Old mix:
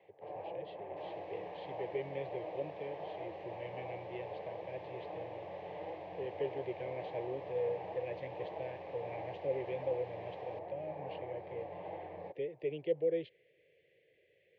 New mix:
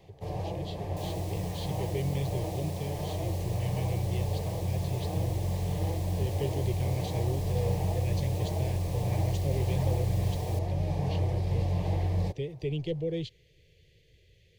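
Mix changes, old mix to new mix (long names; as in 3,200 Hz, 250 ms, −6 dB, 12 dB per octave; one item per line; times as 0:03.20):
first sound +7.0 dB
second sound: add Chebyshev high-pass filter 350 Hz, order 6
master: remove loudspeaker in its box 420–2,300 Hz, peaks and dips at 540 Hz +5 dB, 840 Hz +3 dB, 1,200 Hz −3 dB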